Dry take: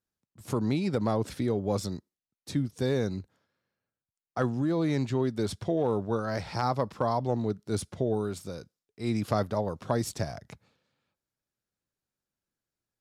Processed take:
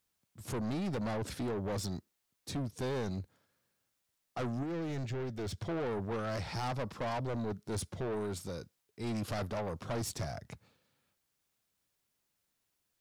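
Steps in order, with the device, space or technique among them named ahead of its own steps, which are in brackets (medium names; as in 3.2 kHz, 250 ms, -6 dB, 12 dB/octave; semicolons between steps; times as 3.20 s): open-reel tape (saturation -32.5 dBFS, distortion -6 dB; peaking EQ 86 Hz +2.5 dB 0.77 oct; white noise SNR 44 dB); 4.63–5.58 s: fifteen-band graphic EQ 250 Hz -6 dB, 1 kHz -8 dB, 4 kHz -4 dB, 10 kHz -9 dB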